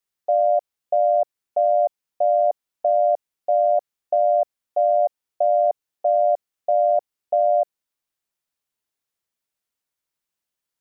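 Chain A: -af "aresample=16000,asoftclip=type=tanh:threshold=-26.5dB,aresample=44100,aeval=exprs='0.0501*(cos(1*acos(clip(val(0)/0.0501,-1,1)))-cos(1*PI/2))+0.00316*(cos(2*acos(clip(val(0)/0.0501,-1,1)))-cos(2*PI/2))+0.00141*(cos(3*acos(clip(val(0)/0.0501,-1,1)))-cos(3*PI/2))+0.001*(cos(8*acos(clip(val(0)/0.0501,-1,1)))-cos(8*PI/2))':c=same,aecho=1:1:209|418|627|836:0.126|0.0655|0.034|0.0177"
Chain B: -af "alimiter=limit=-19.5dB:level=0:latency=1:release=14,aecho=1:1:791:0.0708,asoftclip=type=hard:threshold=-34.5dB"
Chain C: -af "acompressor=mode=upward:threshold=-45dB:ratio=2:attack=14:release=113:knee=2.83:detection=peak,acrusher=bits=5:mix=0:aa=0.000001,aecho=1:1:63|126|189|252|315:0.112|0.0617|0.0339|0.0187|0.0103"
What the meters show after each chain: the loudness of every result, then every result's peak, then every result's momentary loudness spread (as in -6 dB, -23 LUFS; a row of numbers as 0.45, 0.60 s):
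-31.5, -38.5, -21.0 LUFS; -24.5, -34.5, -11.5 dBFS; 6, 6, 6 LU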